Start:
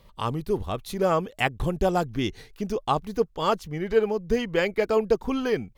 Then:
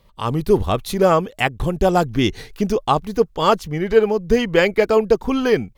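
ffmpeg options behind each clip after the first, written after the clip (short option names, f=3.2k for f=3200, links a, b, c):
-af "dynaudnorm=f=120:g=5:m=13dB,volume=-1dB"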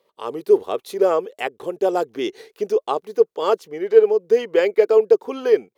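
-af "highpass=f=420:t=q:w=3.5,volume=-8.5dB"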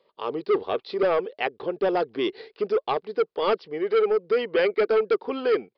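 -filter_complex "[0:a]acrossover=split=1700[a][b];[a]asoftclip=type=tanh:threshold=-17dB[c];[c][b]amix=inputs=2:normalize=0,aresample=11025,aresample=44100"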